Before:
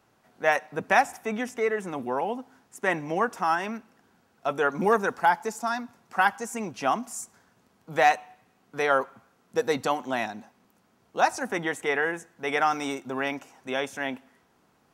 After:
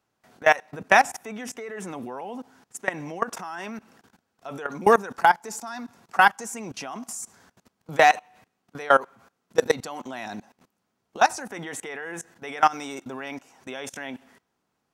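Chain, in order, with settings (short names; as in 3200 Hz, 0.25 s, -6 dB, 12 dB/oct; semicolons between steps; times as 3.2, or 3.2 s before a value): bell 6100 Hz +3.5 dB 2.2 oct; level quantiser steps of 21 dB; gain +7 dB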